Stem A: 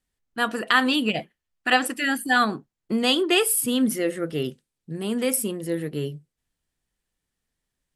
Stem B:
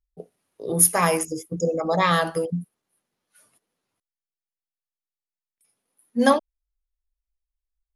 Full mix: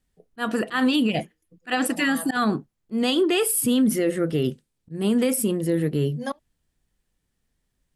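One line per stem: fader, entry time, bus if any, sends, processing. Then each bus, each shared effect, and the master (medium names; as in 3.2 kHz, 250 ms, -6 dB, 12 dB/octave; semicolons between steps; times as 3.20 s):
+2.0 dB, 0.00 s, no send, bass shelf 420 Hz +7 dB; slow attack 168 ms
1.54 s -11 dB -> 2.25 s -1.5 dB, 0.00 s, no send, trance gate ".xxxx..x.x" 95 bpm -24 dB; auto duck -13 dB, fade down 0.25 s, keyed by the first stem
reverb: none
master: peak limiter -13.5 dBFS, peak gain reduction 8.5 dB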